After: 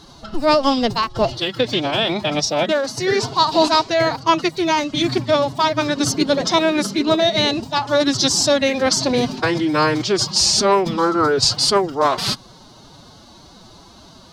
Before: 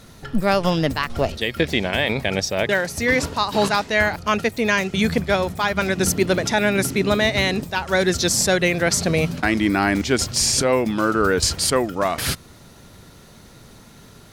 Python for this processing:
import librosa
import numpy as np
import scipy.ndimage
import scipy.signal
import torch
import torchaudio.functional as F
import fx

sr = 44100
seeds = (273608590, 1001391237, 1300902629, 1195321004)

y = fx.curve_eq(x, sr, hz=(290.0, 1100.0, 1700.0, 4500.0, 12000.0), db=(0, 8, -6, 9, -11))
y = fx.pitch_keep_formants(y, sr, semitones=7.5)